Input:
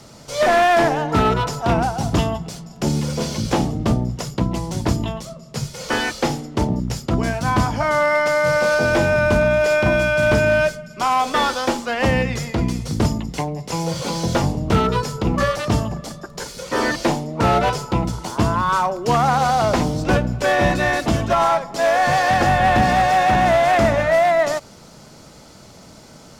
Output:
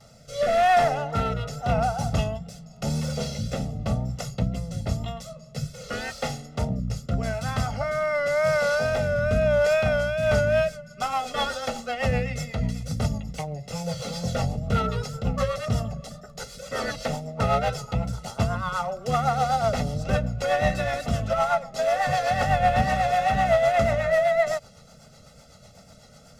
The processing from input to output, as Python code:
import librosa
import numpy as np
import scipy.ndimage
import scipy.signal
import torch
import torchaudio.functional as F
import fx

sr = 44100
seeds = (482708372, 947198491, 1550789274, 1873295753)

y = fx.wow_flutter(x, sr, seeds[0], rate_hz=2.1, depth_cents=69.0)
y = fx.rotary_switch(y, sr, hz=0.9, then_hz=8.0, switch_at_s=10.0)
y = y + 0.92 * np.pad(y, (int(1.5 * sr / 1000.0), 0))[:len(y)]
y = F.gain(torch.from_numpy(y), -7.5).numpy()